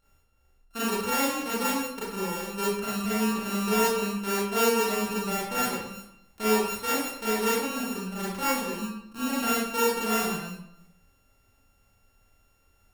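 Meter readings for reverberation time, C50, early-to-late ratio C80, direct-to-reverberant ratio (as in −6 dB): 0.75 s, −1.5 dB, 3.5 dB, −9.0 dB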